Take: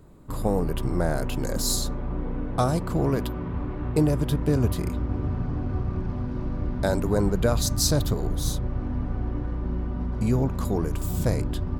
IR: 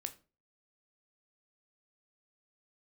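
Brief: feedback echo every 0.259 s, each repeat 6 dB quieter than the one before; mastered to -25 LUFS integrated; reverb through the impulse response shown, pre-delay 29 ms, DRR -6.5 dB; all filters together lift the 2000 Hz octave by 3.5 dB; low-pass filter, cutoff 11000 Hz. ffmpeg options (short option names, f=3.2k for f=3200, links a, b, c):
-filter_complex "[0:a]lowpass=11k,equalizer=f=2k:t=o:g=5,aecho=1:1:259|518|777|1036|1295|1554:0.501|0.251|0.125|0.0626|0.0313|0.0157,asplit=2[a][b];[1:a]atrim=start_sample=2205,adelay=29[c];[b][c]afir=irnorm=-1:irlink=0,volume=9dB[d];[a][d]amix=inputs=2:normalize=0,volume=-7.5dB"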